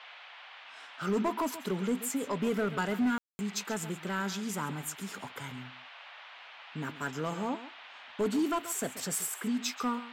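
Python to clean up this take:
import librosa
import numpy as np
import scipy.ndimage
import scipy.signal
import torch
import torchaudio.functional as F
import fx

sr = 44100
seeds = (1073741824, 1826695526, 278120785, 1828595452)

y = fx.fix_declip(x, sr, threshold_db=-24.0)
y = fx.fix_ambience(y, sr, seeds[0], print_start_s=0.16, print_end_s=0.66, start_s=3.18, end_s=3.39)
y = fx.noise_reduce(y, sr, print_start_s=0.16, print_end_s=0.66, reduce_db=28.0)
y = fx.fix_echo_inverse(y, sr, delay_ms=134, level_db=-14.5)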